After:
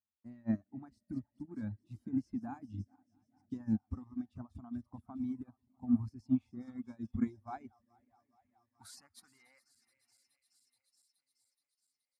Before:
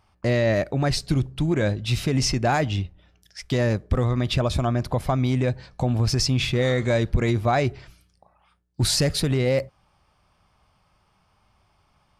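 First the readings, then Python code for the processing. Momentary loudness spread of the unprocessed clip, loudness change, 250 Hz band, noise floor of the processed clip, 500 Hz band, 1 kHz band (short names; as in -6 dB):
5 LU, -16.5 dB, -10.0 dB, under -85 dBFS, -33.0 dB, -23.5 dB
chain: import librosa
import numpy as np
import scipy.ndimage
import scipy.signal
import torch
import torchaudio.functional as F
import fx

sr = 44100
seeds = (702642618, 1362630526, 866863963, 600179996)

p1 = fx.reverse_delay_fb(x, sr, ms=212, feedback_pct=83, wet_db=-13.5)
p2 = fx.curve_eq(p1, sr, hz=(100.0, 160.0, 220.0, 470.0, 840.0, 2200.0, 3200.0, 11000.0), db=(0, -19, 0, -28, -3, -6, -11, 13))
p3 = fx.noise_reduce_blind(p2, sr, reduce_db=8)
p4 = fx.filter_sweep_bandpass(p3, sr, from_hz=270.0, to_hz=4100.0, start_s=7.02, end_s=10.99, q=1.6)
p5 = p4 + fx.echo_feedback(p4, sr, ms=650, feedback_pct=57, wet_db=-22.0, dry=0)
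p6 = fx.dereverb_blind(p5, sr, rt60_s=0.56)
p7 = scipy.signal.sosfilt(scipy.signal.butter(2, 65.0, 'highpass', fs=sr, output='sos'), p6)
p8 = fx.upward_expand(p7, sr, threshold_db=-47.0, expansion=2.5)
y = p8 * 10.0 ** (7.0 / 20.0)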